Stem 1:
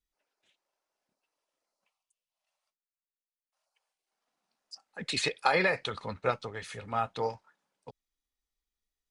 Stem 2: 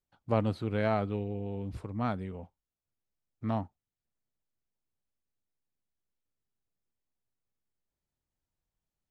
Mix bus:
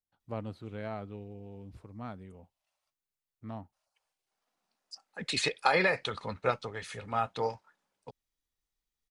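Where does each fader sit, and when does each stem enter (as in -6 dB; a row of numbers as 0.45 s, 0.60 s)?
0.0 dB, -10.0 dB; 0.20 s, 0.00 s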